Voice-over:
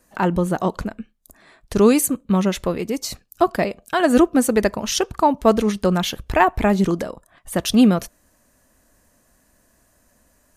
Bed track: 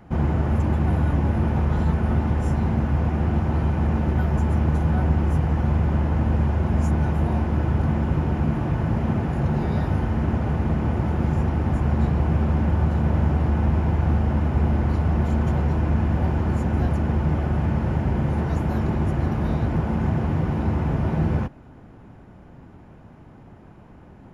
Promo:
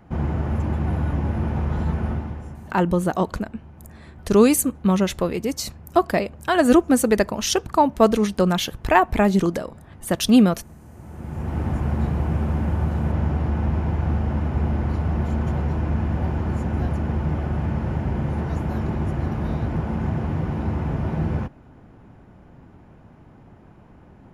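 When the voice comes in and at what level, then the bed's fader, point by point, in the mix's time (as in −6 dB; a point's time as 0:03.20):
2.55 s, −0.5 dB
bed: 0:02.06 −2.5 dB
0:02.79 −22.5 dB
0:10.88 −22.5 dB
0:11.58 −2 dB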